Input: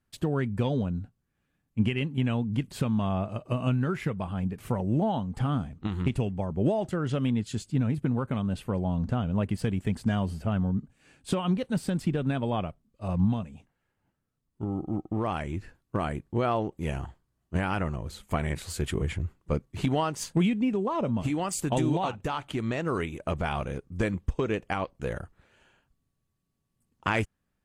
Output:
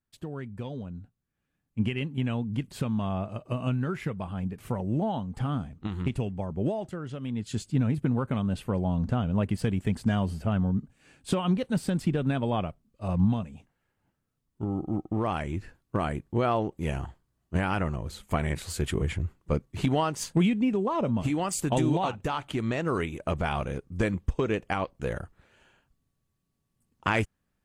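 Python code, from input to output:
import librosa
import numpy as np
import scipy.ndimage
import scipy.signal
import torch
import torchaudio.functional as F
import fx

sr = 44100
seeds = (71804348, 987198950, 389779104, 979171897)

y = fx.gain(x, sr, db=fx.line((0.8, -9.5), (1.83, -2.0), (6.57, -2.0), (7.2, -9.5), (7.55, 1.0)))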